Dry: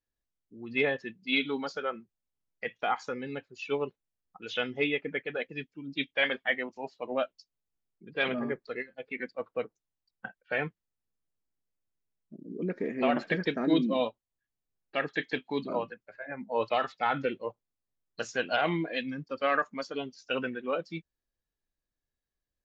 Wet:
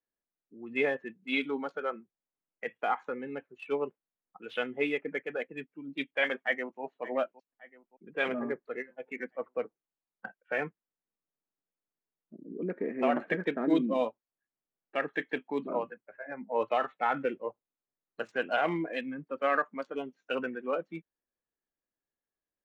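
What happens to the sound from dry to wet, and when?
6.38–6.82 s: echo throw 570 ms, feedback 50%, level -15.5 dB
whole clip: local Wiener filter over 9 samples; three-band isolator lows -16 dB, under 180 Hz, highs -14 dB, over 2.9 kHz

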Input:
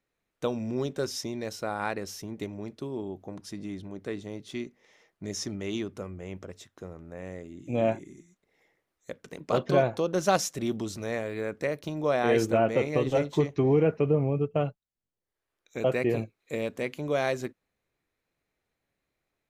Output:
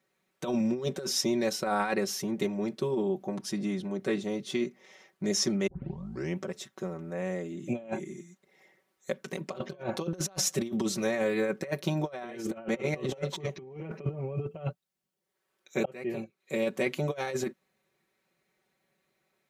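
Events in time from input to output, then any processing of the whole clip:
5.67 s: tape start 0.71 s
15.85–17.04 s: fade in
whole clip: high-pass 120 Hz 12 dB/octave; comb 5.3 ms, depth 84%; compressor with a negative ratio -30 dBFS, ratio -0.5

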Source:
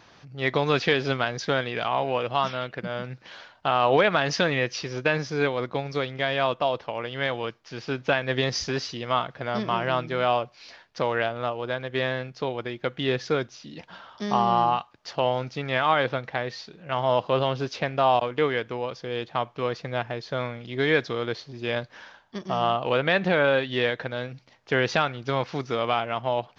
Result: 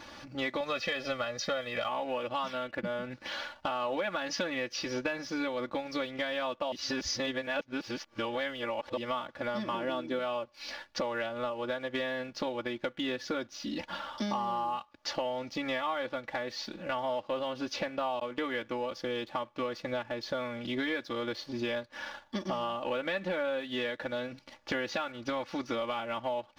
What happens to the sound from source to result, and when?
0.60–1.89 s: comb 1.6 ms
2.58–3.12 s: distance through air 130 m
6.72–8.97 s: reverse
9.74–10.19 s: small resonant body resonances 290/430/3400 Hz, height 12 dB
15.30–15.90 s: Butterworth band-stop 1.5 kHz, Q 7.5
whole clip: comb 3.5 ms, depth 89%; compression 6:1, threshold -35 dBFS; waveshaping leveller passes 1

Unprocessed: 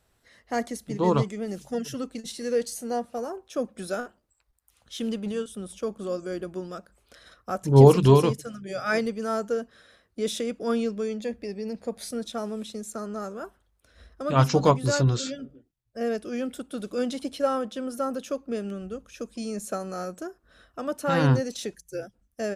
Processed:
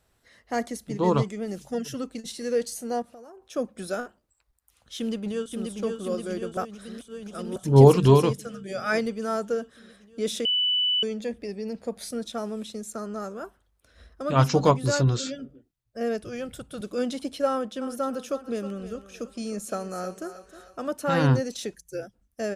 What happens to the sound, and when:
3.02–3.42 s: compression 5:1, threshold -45 dBFS
4.98–5.81 s: echo throw 530 ms, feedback 75%, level -4 dB
6.57–7.56 s: reverse
10.45–11.03 s: bleep 2.98 kHz -20.5 dBFS
16.23–16.81 s: resonant low shelf 180 Hz +10.5 dB, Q 3
17.50–20.89 s: thinning echo 313 ms, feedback 50%, level -11 dB

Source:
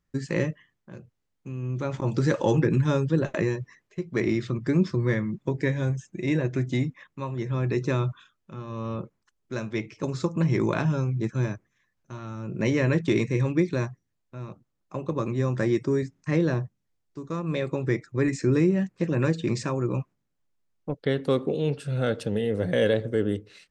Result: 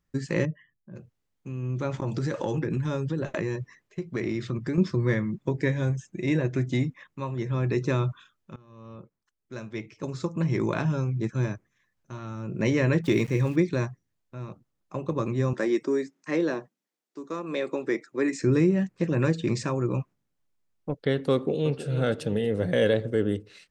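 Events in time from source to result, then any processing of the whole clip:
0.45–0.96 s: spectral contrast enhancement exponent 1.6
2.01–4.78 s: compression, threshold -24 dBFS
8.56–12.33 s: fade in equal-power, from -19.5 dB
13.04–13.56 s: small samples zeroed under -42.5 dBFS
15.53–18.40 s: high-pass 240 Hz 24 dB/octave
21.33–21.82 s: echo throw 320 ms, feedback 50%, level -11.5 dB

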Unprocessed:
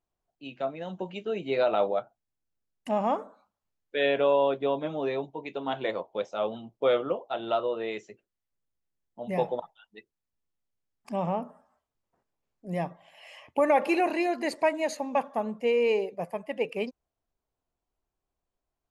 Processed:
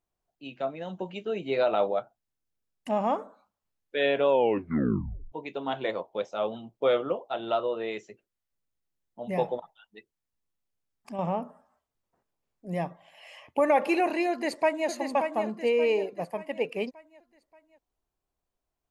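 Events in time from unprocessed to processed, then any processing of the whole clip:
4.29 s: tape stop 1.03 s
9.57–11.19 s: compression 1.5:1, threshold -42 dBFS
14.30–14.88 s: echo throw 580 ms, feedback 45%, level -6.5 dB

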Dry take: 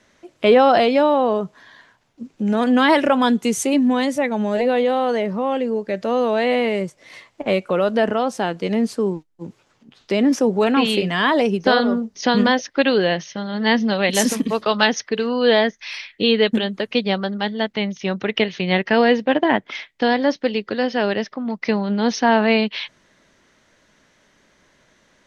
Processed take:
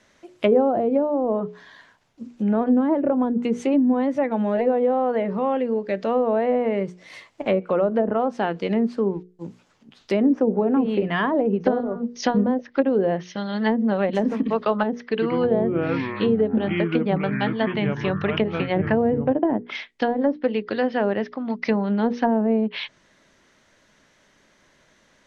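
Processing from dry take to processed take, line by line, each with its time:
15.10–19.32 s: ever faster or slower copies 97 ms, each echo -5 st, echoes 3, each echo -6 dB
whole clip: low-pass that closes with the level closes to 480 Hz, closed at -12 dBFS; hum notches 60/120/180/240/300/360/420/480 Hz; trim -1 dB

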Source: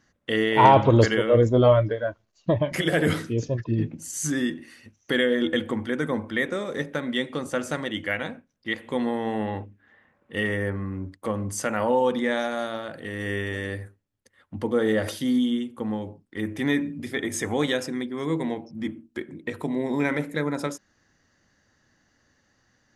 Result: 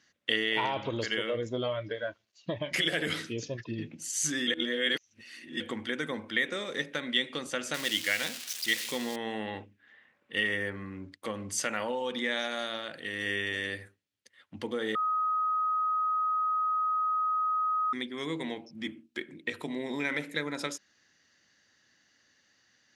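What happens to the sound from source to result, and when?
4.47–5.60 s: reverse
7.74–9.16 s: zero-crossing glitches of -23.5 dBFS
14.95–17.93 s: bleep 1.26 kHz -19 dBFS
whole clip: compression 6:1, threshold -22 dBFS; frequency weighting D; trim -6.5 dB

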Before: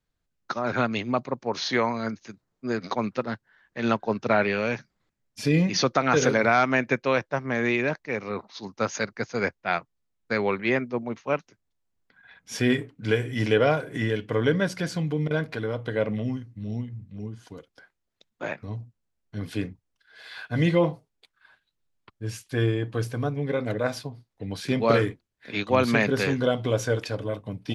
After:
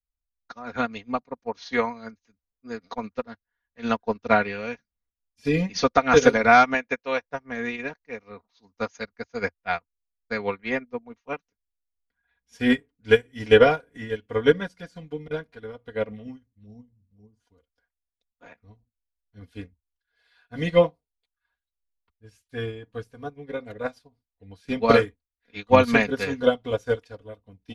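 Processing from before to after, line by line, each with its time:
6.74–7.25 s: bass shelf 230 Hz -10 dB
16.66–17.40 s: high-order bell 2.2 kHz -13.5 dB
whole clip: resonant low shelf 110 Hz +12.5 dB, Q 1.5; comb 4.2 ms, depth 69%; upward expansion 2.5:1, over -35 dBFS; trim +6 dB

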